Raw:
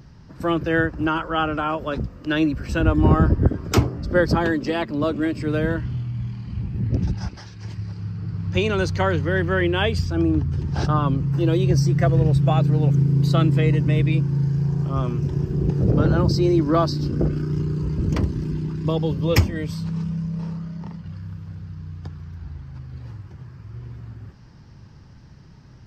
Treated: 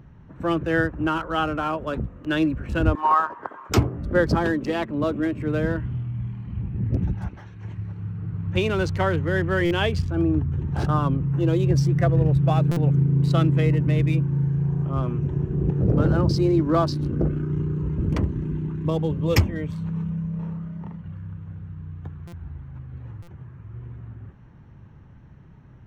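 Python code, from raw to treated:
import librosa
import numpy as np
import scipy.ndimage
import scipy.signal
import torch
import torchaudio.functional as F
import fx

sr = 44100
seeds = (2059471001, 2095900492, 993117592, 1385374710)

y = fx.wiener(x, sr, points=9)
y = fx.highpass_res(y, sr, hz=1000.0, q=4.9, at=(2.95, 3.7))
y = fx.buffer_glitch(y, sr, at_s=(9.65, 12.71, 22.27, 23.22), block=256, repeats=9)
y = y * librosa.db_to_amplitude(-1.5)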